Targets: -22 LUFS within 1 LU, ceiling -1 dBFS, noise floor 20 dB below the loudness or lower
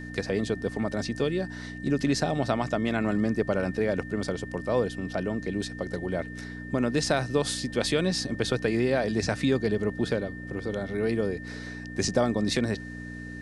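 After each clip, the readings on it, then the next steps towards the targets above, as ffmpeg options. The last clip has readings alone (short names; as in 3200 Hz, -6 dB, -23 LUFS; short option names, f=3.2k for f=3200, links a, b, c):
hum 60 Hz; harmonics up to 300 Hz; hum level -37 dBFS; steady tone 1800 Hz; tone level -42 dBFS; loudness -28.5 LUFS; peak -9.0 dBFS; loudness target -22.0 LUFS
-> -af "bandreject=f=60:t=h:w=4,bandreject=f=120:t=h:w=4,bandreject=f=180:t=h:w=4,bandreject=f=240:t=h:w=4,bandreject=f=300:t=h:w=4"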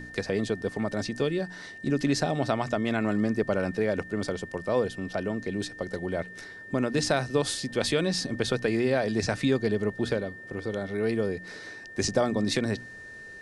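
hum none; steady tone 1800 Hz; tone level -42 dBFS
-> -af "bandreject=f=1.8k:w=30"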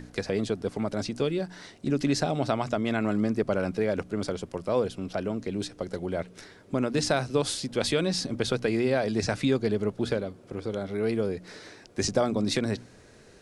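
steady tone none; loudness -29.0 LUFS; peak -9.0 dBFS; loudness target -22.0 LUFS
-> -af "volume=7dB"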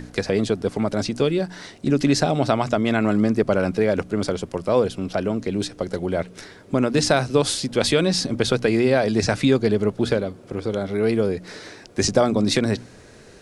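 loudness -22.0 LUFS; peak -2.0 dBFS; noise floor -46 dBFS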